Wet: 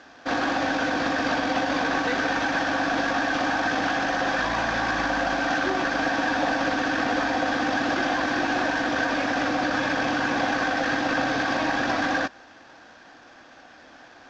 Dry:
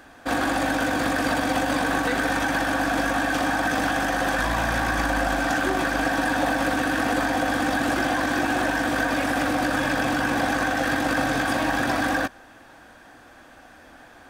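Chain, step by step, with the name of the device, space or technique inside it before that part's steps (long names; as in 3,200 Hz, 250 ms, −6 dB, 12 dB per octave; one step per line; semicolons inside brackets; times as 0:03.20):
early wireless headset (high-pass filter 190 Hz 6 dB per octave; variable-slope delta modulation 32 kbit/s)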